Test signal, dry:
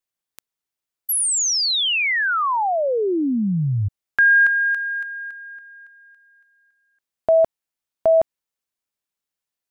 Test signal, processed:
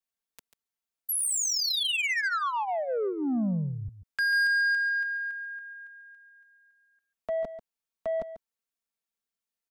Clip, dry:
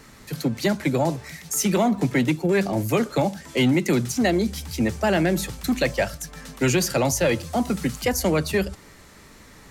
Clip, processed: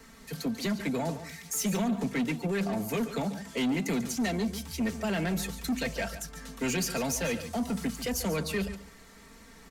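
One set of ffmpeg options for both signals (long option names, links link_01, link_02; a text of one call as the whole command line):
ffmpeg -i in.wav -filter_complex "[0:a]aecho=1:1:4.4:0.65,acrossover=split=290|1600|2200[link_01][link_02][link_03][link_04];[link_02]alimiter=limit=-18.5dB:level=0:latency=1:release=35[link_05];[link_01][link_05][link_03][link_04]amix=inputs=4:normalize=0,asoftclip=type=tanh:threshold=-17.5dB,aecho=1:1:142:0.237,volume=-6.5dB" out.wav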